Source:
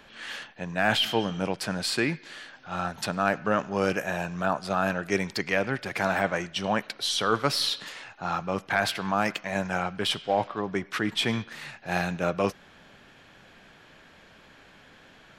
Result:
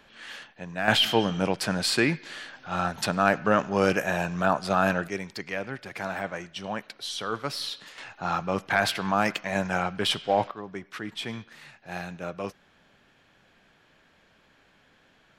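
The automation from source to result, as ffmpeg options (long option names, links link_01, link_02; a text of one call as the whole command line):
ffmpeg -i in.wav -af "asetnsamples=nb_out_samples=441:pad=0,asendcmd='0.88 volume volume 3dB;5.08 volume volume -6.5dB;7.98 volume volume 1.5dB;10.51 volume volume -8dB',volume=-4dB" out.wav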